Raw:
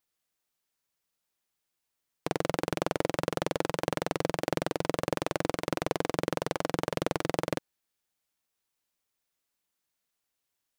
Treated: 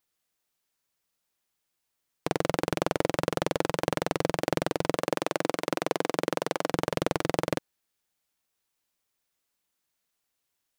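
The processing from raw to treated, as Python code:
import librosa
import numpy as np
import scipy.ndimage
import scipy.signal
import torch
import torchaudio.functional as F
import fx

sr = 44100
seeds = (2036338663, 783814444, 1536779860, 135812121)

y = fx.highpass(x, sr, hz=200.0, slope=12, at=(4.96, 6.72))
y = F.gain(torch.from_numpy(y), 2.5).numpy()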